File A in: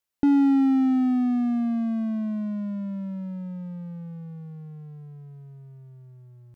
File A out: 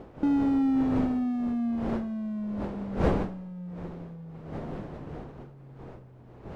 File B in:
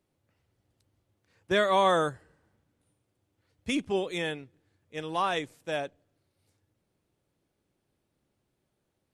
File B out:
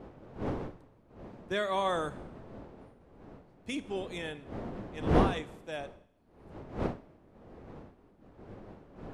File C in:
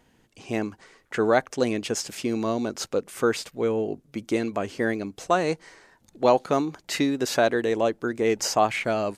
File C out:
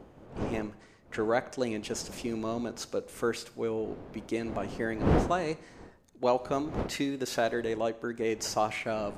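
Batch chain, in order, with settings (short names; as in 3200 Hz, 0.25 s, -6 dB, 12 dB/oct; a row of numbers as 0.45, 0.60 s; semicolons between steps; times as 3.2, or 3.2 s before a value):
wind noise 450 Hz -31 dBFS; Schroeder reverb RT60 0.76 s, combs from 30 ms, DRR 16.5 dB; normalise peaks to -12 dBFS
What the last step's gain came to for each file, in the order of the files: -5.0, -7.5, -7.5 dB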